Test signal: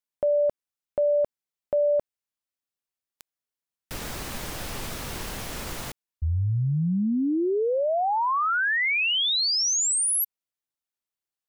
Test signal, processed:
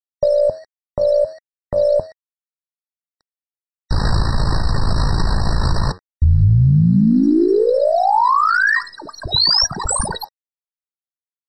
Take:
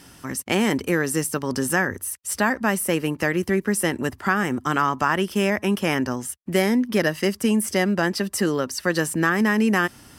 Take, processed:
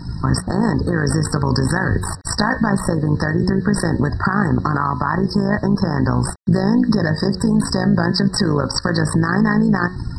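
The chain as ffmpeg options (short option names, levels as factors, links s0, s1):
-filter_complex "[0:a]asplit=2[s0][s1];[s1]acrusher=samples=10:mix=1:aa=0.000001:lfo=1:lforange=10:lforate=3.9,volume=0.316[s2];[s0][s2]amix=inputs=2:normalize=0,aeval=exprs='0.668*(cos(1*acos(clip(val(0)/0.668,-1,1)))-cos(1*PI/2))+0.0335*(cos(2*acos(clip(val(0)/0.668,-1,1)))-cos(2*PI/2))+0.0266*(cos(5*acos(clip(val(0)/0.668,-1,1)))-cos(5*PI/2))':c=same,equalizer=f=250:t=o:w=0.67:g=-5,equalizer=f=1000:t=o:w=0.67:g=8,equalizer=f=2500:t=o:w=0.67:g=10,tremolo=f=55:d=0.788,acompressor=threshold=0.0447:ratio=3:attack=3.8:release=252:knee=1:detection=peak,bass=f=250:g=15,treble=f=4000:g=11,bandreject=f=91.16:t=h:w=4,bandreject=f=182.32:t=h:w=4,bandreject=f=273.48:t=h:w=4,bandreject=f=364.64:t=h:w=4,bandreject=f=455.8:t=h:w=4,bandreject=f=546.96:t=h:w=4,bandreject=f=638.12:t=h:w=4,bandreject=f=729.28:t=h:w=4,bandreject=f=820.44:t=h:w=4,bandreject=f=911.6:t=h:w=4,bandreject=f=1002.76:t=h:w=4,bandreject=f=1093.92:t=h:w=4,bandreject=f=1185.08:t=h:w=4,bandreject=f=1276.24:t=h:w=4,bandreject=f=1367.4:t=h:w=4,bandreject=f=1458.56:t=h:w=4,bandreject=f=1549.72:t=h:w=4,bandreject=f=1640.88:t=h:w=4,bandreject=f=1732.04:t=h:w=4,bandreject=f=1823.2:t=h:w=4,bandreject=f=1914.36:t=h:w=4,bandreject=f=2005.52:t=h:w=4,bandreject=f=2096.68:t=h:w=4,bandreject=f=2187.84:t=h:w=4,bandreject=f=2279:t=h:w=4,afftdn=nr=21:nf=-40,acrusher=bits=8:mix=0:aa=0.000001,lowpass=f=6000:w=0.5412,lowpass=f=6000:w=1.3066,alimiter=level_in=8.91:limit=0.891:release=50:level=0:latency=1,afftfilt=real='re*eq(mod(floor(b*sr/1024/1900),2),0)':imag='im*eq(mod(floor(b*sr/1024/1900),2),0)':win_size=1024:overlap=0.75,volume=0.531"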